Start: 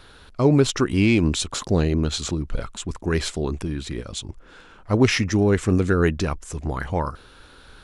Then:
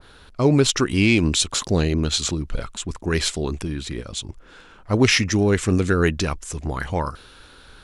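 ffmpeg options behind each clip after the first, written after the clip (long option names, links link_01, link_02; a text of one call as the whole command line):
ffmpeg -i in.wav -af "adynamicequalizer=threshold=0.0141:dfrequency=1800:dqfactor=0.7:tfrequency=1800:tqfactor=0.7:attack=5:release=100:ratio=0.375:range=3:mode=boostabove:tftype=highshelf" out.wav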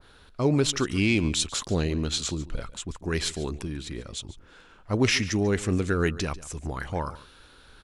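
ffmpeg -i in.wav -af "aecho=1:1:143:0.133,volume=-6dB" out.wav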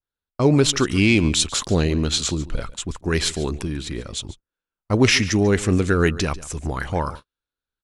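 ffmpeg -i in.wav -af "agate=range=-45dB:threshold=-40dB:ratio=16:detection=peak,volume=6.5dB" out.wav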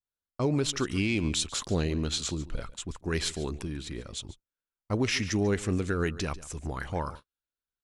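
ffmpeg -i in.wav -af "alimiter=limit=-8.5dB:level=0:latency=1:release=235,volume=-8.5dB" out.wav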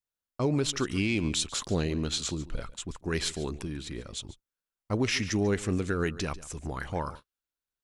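ffmpeg -i in.wav -af "equalizer=frequency=79:width_type=o:width=0.44:gain=-3" out.wav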